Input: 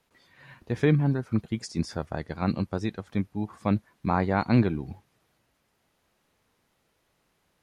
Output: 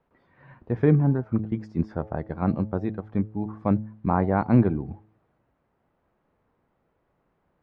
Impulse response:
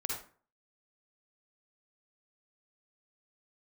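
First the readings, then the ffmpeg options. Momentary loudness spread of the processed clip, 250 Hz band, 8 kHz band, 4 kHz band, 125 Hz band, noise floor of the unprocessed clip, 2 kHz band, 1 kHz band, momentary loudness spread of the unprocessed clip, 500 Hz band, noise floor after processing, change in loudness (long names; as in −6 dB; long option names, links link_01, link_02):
11 LU, +2.5 dB, can't be measured, below −15 dB, +3.0 dB, −73 dBFS, −4.0 dB, +1.5 dB, 11 LU, +2.5 dB, −73 dBFS, +2.5 dB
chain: -af "lowpass=1200,bandreject=frequency=107.5:width_type=h:width=4,bandreject=frequency=215:width_type=h:width=4,bandreject=frequency=322.5:width_type=h:width=4,bandreject=frequency=430:width_type=h:width=4,bandreject=frequency=537.5:width_type=h:width=4,bandreject=frequency=645:width_type=h:width=4,bandreject=frequency=752.5:width_type=h:width=4,bandreject=frequency=860:width_type=h:width=4,volume=3dB"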